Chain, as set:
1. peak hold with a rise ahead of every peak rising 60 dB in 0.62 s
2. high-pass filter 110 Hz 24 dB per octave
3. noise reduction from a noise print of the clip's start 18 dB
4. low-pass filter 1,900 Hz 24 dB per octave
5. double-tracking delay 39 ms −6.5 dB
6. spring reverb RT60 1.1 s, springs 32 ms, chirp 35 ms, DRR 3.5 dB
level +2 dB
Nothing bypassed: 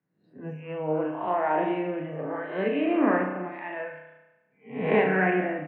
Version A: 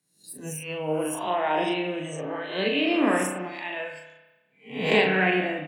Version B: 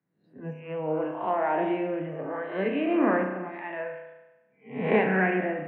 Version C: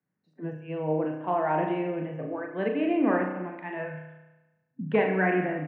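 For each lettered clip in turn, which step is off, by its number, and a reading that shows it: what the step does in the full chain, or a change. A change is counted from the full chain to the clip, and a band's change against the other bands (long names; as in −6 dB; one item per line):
4, 2 kHz band +3.5 dB
5, change in momentary loudness spread −2 LU
1, 125 Hz band +2.5 dB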